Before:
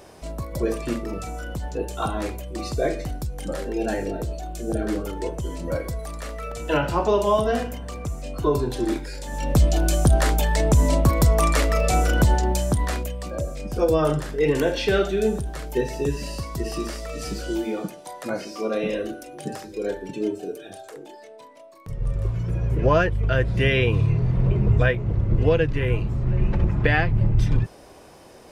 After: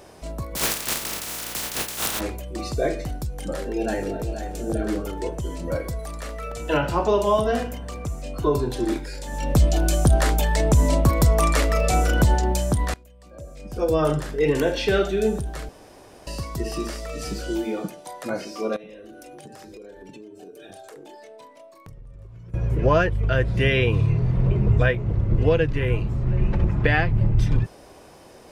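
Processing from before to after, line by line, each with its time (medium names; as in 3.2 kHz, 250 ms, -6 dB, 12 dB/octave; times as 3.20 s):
0.55–2.19 s: spectral contrast reduction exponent 0.13
3.54–4.33 s: echo throw 480 ms, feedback 25%, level -10 dB
12.94–14.01 s: fade in quadratic, from -22.5 dB
15.69–16.27 s: room tone
18.76–22.54 s: compression 20:1, threshold -38 dBFS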